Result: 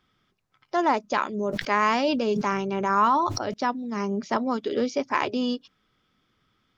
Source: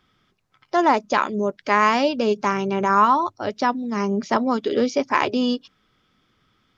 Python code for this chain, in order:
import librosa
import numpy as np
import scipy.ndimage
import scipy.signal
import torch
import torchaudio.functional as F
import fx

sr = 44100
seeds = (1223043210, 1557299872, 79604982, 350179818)

y = fx.sustainer(x, sr, db_per_s=34.0, at=(1.37, 3.54))
y = y * 10.0 ** (-5.0 / 20.0)